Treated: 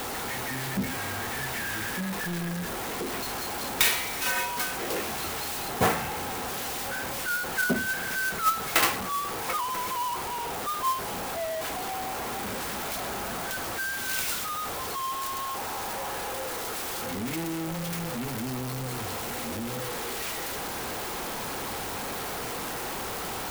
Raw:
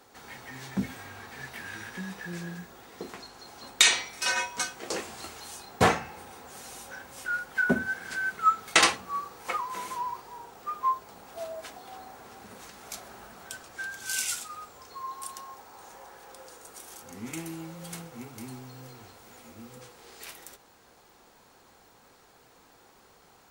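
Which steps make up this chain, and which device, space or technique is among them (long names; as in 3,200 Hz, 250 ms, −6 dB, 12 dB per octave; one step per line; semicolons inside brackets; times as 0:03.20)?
early CD player with a faulty converter (converter with a step at zero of −23.5 dBFS; converter with an unsteady clock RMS 0.043 ms)
level −4 dB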